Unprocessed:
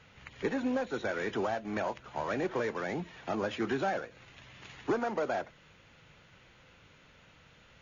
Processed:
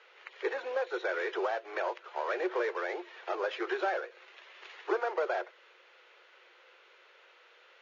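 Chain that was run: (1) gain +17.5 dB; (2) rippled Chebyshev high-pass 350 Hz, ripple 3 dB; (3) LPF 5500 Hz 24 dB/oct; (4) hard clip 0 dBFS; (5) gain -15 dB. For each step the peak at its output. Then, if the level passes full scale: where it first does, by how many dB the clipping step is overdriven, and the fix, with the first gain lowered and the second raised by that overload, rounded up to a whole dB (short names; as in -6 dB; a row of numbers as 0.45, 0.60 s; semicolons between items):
-2.0, -3.5, -3.5, -3.5, -18.5 dBFS; no overload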